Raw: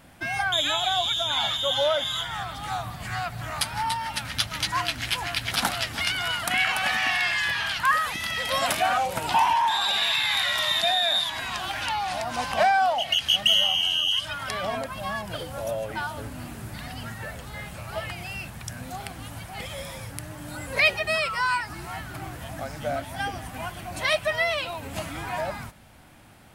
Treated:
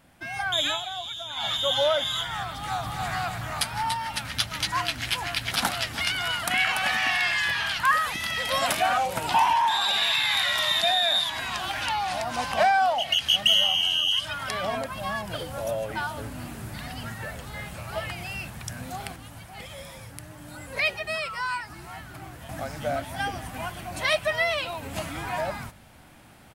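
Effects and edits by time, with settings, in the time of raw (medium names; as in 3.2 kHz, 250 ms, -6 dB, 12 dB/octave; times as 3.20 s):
0.66–1.54 s: dip -10 dB, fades 0.19 s
2.54–3.10 s: echo throw 280 ms, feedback 55%, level -2.5 dB
19.16–22.49 s: gain -5.5 dB
whole clip: hum notches 50/100 Hz; level rider gain up to 7 dB; trim -6.5 dB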